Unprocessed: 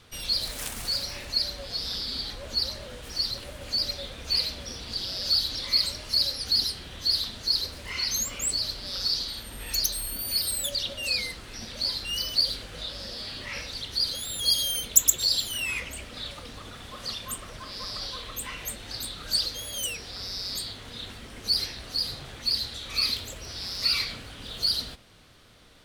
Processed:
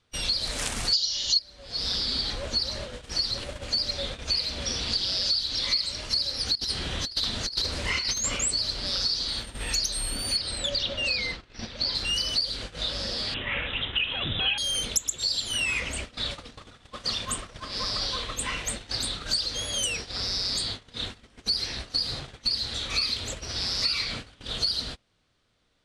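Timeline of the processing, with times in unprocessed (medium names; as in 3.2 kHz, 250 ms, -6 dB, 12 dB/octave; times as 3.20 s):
0.93–1.39 s: time-frequency box 2.8–7.2 kHz +22 dB
4.62–6.01 s: peaking EQ 3.8 kHz +4 dB 2 oct
6.55–8.37 s: compressor with a negative ratio -31 dBFS, ratio -0.5
10.37–11.95 s: low-pass 4.6 kHz
13.34–14.58 s: careless resampling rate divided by 6×, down none, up filtered
whole clip: low-pass 9 kHz 24 dB/octave; gate -39 dBFS, range -22 dB; compression 8:1, threshold -30 dBFS; trim +6.5 dB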